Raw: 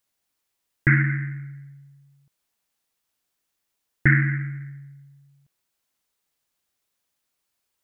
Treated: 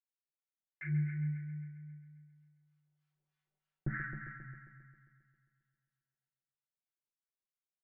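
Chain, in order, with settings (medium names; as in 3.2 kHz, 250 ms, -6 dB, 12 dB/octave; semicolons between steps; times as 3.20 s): Doppler pass-by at 3.31 s, 23 m/s, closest 10 m; low-pass 2.4 kHz; comb 5.3 ms, depth 98%; in parallel at 0 dB: compression, threshold -39 dBFS, peak gain reduction 21.5 dB; on the sum: flange 0.74 Hz, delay 9.9 ms, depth 6.3 ms, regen -46%; feedback comb 150 Hz, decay 0.9 s, harmonics all, mix 80%; harmonic tremolo 3.1 Hz, depth 100%, crossover 860 Hz; on a send: multi-head delay 134 ms, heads first and second, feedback 50%, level -11 dB; on the sum: trim +4.5 dB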